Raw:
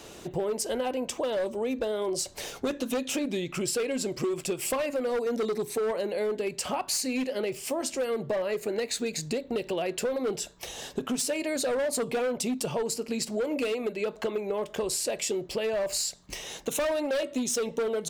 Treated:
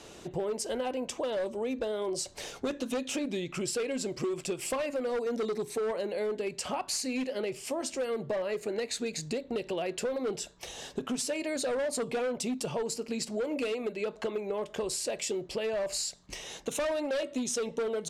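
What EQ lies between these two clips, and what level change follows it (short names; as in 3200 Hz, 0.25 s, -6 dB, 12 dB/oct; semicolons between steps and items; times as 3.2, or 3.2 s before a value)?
LPF 10000 Hz 12 dB/oct; -3.0 dB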